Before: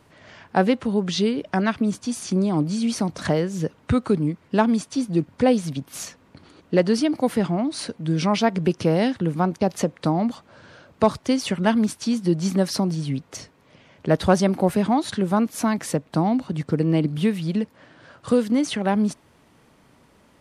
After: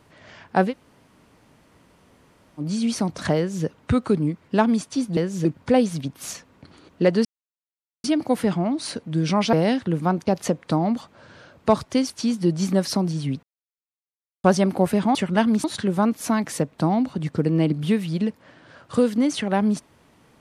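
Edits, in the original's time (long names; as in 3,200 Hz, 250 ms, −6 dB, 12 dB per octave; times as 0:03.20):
0:00.69–0:02.62: fill with room tone, crossfade 0.10 s
0:03.37–0:03.65: duplicate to 0:05.17
0:06.97: splice in silence 0.79 s
0:08.46–0:08.87: remove
0:11.44–0:11.93: move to 0:14.98
0:13.26–0:14.27: silence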